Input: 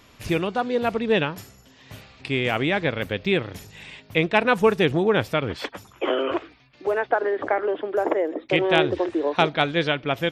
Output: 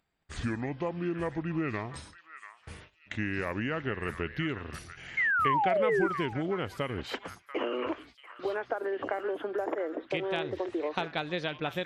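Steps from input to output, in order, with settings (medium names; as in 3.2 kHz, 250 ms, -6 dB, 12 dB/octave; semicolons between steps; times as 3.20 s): gliding tape speed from 67% -> 107%; gate -45 dBFS, range -57 dB; compression, threshold -24 dBFS, peak gain reduction 11.5 dB; painted sound fall, 5.17–6.07 s, 320–2200 Hz -22 dBFS; on a send: repeats whose band climbs or falls 689 ms, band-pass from 1.5 kHz, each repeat 1.4 oct, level -7.5 dB; on the sum: upward compressor, threshold -50 dBFS; trim -4.5 dB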